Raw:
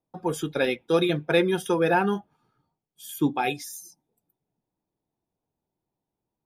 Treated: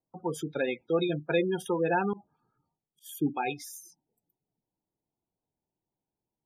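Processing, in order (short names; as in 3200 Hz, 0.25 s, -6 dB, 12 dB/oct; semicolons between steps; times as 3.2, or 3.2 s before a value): spectral gate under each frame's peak -20 dB strong; 2.13–3.06 auto swell 0.113 s; gain -5 dB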